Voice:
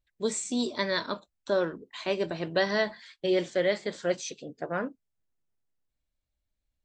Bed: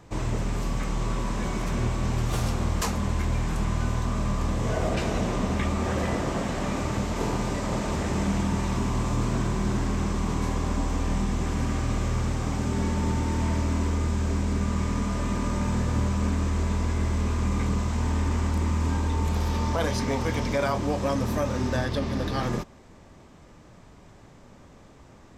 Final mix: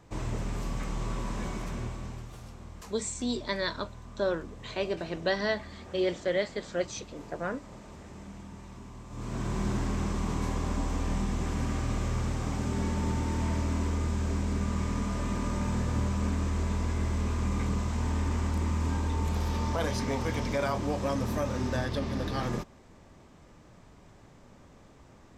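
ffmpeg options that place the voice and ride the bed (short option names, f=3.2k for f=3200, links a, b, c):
-filter_complex "[0:a]adelay=2700,volume=-2.5dB[a];[1:a]volume=10dB,afade=t=out:st=1.41:d=0.93:silence=0.199526,afade=t=in:st=9.09:d=0.5:silence=0.16788[b];[a][b]amix=inputs=2:normalize=0"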